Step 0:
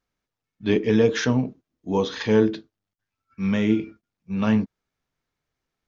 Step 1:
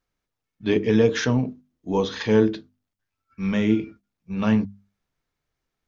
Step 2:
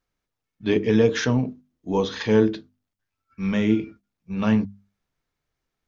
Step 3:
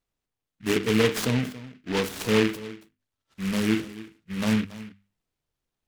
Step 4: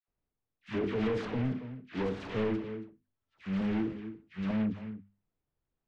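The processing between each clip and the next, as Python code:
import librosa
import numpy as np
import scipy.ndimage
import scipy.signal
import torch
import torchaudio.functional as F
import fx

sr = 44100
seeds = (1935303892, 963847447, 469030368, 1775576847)

y1 = fx.low_shelf(x, sr, hz=76.0, db=5.5)
y1 = fx.hum_notches(y1, sr, base_hz=50, count=5)
y2 = y1
y3 = y2 + 10.0 ** (-17.0 / 20.0) * np.pad(y2, (int(279 * sr / 1000.0), 0))[:len(y2)]
y3 = fx.noise_mod_delay(y3, sr, seeds[0], noise_hz=2000.0, depth_ms=0.16)
y3 = F.gain(torch.from_numpy(y3), -3.5).numpy()
y4 = 10.0 ** (-25.5 / 20.0) * np.tanh(y3 / 10.0 ** (-25.5 / 20.0))
y4 = fx.spacing_loss(y4, sr, db_at_10k=36)
y4 = fx.dispersion(y4, sr, late='lows', ms=84.0, hz=1100.0)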